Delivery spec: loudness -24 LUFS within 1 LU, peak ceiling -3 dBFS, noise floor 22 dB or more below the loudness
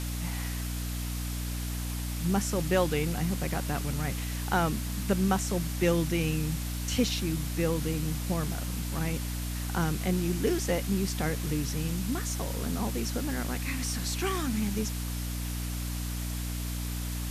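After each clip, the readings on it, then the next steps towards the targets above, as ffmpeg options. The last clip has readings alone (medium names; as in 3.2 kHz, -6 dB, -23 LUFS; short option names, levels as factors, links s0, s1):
hum 60 Hz; highest harmonic 300 Hz; hum level -31 dBFS; noise floor -34 dBFS; noise floor target -53 dBFS; loudness -31.0 LUFS; peak level -14.0 dBFS; loudness target -24.0 LUFS
-> -af "bandreject=f=60:t=h:w=4,bandreject=f=120:t=h:w=4,bandreject=f=180:t=h:w=4,bandreject=f=240:t=h:w=4,bandreject=f=300:t=h:w=4"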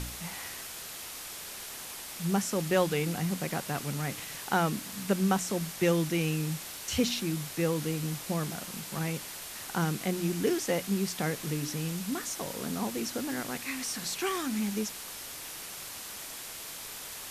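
hum not found; noise floor -42 dBFS; noise floor target -55 dBFS
-> -af "afftdn=nr=13:nf=-42"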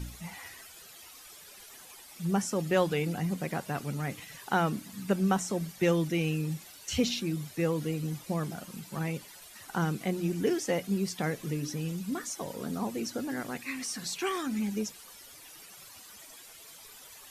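noise floor -51 dBFS; noise floor target -54 dBFS
-> -af "afftdn=nr=6:nf=-51"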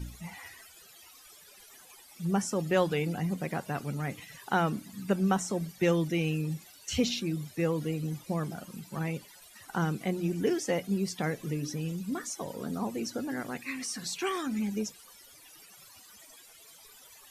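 noise floor -55 dBFS; loudness -32.0 LUFS; peak level -14.0 dBFS; loudness target -24.0 LUFS
-> -af "volume=2.51"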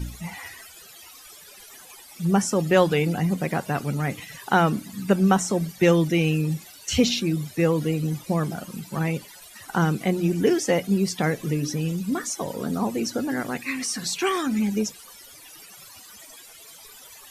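loudness -24.0 LUFS; peak level -6.0 dBFS; noise floor -47 dBFS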